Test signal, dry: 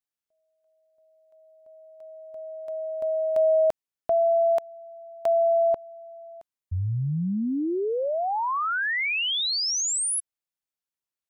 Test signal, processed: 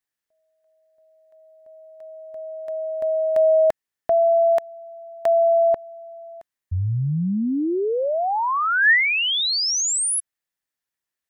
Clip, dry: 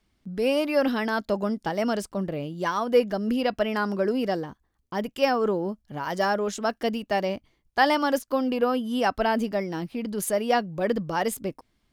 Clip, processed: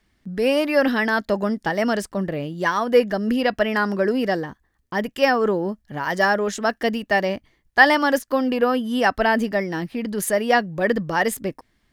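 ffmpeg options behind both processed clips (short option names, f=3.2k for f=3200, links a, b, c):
-af "equalizer=f=1.8k:w=4.4:g=9,volume=4dB"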